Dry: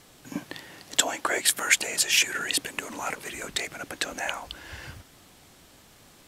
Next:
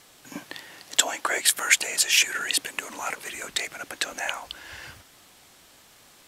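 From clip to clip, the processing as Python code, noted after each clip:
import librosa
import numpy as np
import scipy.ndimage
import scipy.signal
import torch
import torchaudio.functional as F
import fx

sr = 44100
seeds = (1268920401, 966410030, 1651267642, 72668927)

y = fx.low_shelf(x, sr, hz=410.0, db=-10.0)
y = y * librosa.db_to_amplitude(2.0)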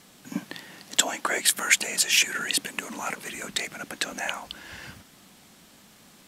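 y = fx.peak_eq(x, sr, hz=200.0, db=13.5, octaves=0.87)
y = y * librosa.db_to_amplitude(-1.0)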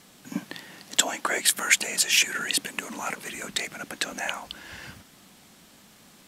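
y = x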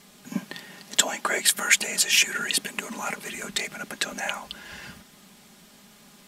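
y = x + 0.49 * np.pad(x, (int(4.9 * sr / 1000.0), 0))[:len(x)]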